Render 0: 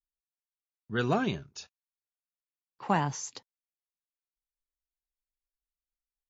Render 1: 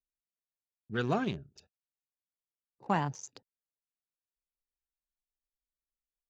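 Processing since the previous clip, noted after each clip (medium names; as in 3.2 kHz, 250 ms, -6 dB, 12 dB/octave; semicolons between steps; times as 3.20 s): local Wiener filter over 41 samples; time-frequency box 2.25–2.87 s, 1.2–3.5 kHz -13 dB; trim -2.5 dB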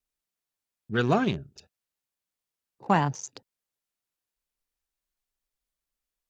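vibrato 0.63 Hz 8.7 cents; trim +7 dB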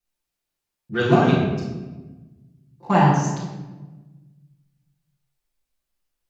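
reverberation RT60 1.2 s, pre-delay 6 ms, DRR -9 dB; trim -3.5 dB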